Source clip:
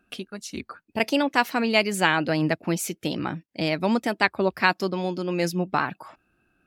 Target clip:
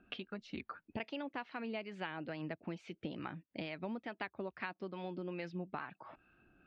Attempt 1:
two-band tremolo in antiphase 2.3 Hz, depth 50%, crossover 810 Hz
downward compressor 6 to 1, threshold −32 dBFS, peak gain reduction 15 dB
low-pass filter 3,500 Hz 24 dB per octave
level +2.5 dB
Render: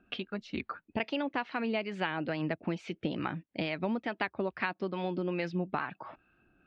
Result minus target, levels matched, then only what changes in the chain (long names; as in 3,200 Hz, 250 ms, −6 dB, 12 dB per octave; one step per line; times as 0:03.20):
downward compressor: peak gain reduction −9 dB
change: downward compressor 6 to 1, threshold −43 dBFS, peak gain reduction 24.5 dB